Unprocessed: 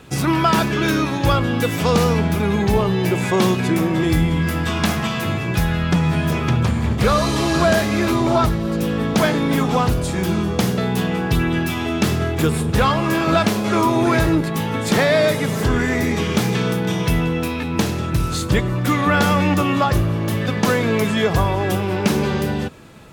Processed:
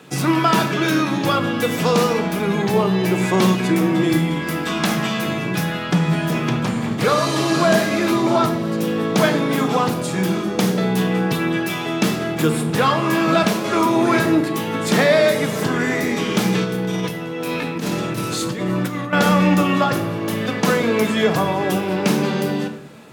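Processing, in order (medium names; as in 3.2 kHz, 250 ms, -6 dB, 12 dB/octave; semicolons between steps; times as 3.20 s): high-pass 150 Hz 24 dB/octave; 16.64–19.13 s: compressor with a negative ratio -25 dBFS, ratio -1; simulated room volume 310 m³, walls mixed, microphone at 0.49 m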